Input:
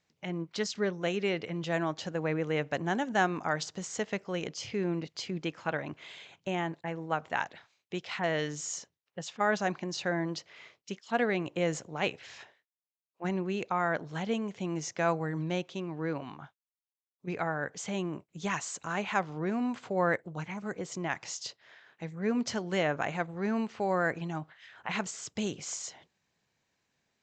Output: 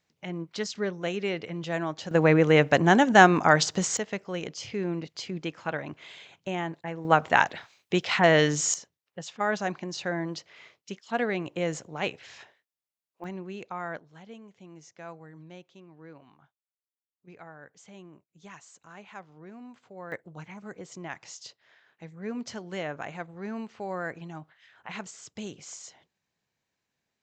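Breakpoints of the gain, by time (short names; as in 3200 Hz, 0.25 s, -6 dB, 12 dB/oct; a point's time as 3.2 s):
+0.5 dB
from 2.11 s +11.5 dB
from 3.97 s +1 dB
from 7.05 s +11 dB
from 8.74 s +0.5 dB
from 13.24 s -6 dB
from 13.99 s -14.5 dB
from 20.12 s -5 dB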